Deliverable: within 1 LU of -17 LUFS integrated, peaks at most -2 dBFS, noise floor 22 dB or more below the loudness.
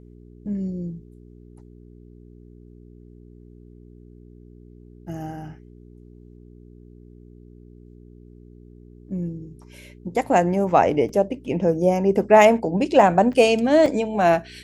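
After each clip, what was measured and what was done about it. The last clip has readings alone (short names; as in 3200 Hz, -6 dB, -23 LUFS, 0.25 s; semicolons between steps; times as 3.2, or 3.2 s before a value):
dropouts 3; longest dropout 2.3 ms; hum 60 Hz; harmonics up to 420 Hz; hum level -44 dBFS; loudness -19.5 LUFS; peak -2.5 dBFS; loudness target -17.0 LUFS
-> interpolate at 11.09/13.33/13.86, 2.3 ms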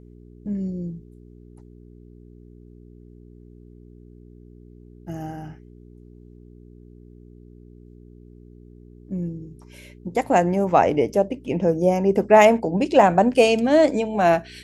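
dropouts 0; hum 60 Hz; harmonics up to 420 Hz; hum level -44 dBFS
-> de-hum 60 Hz, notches 7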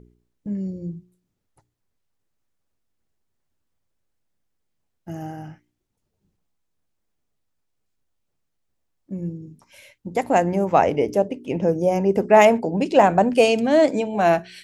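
hum none; loudness -19.0 LUFS; peak -2.5 dBFS; loudness target -17.0 LUFS
-> gain +2 dB; limiter -2 dBFS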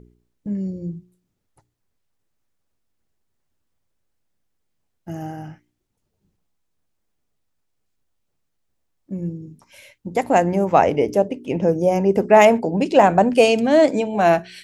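loudness -17.5 LUFS; peak -2.0 dBFS; noise floor -74 dBFS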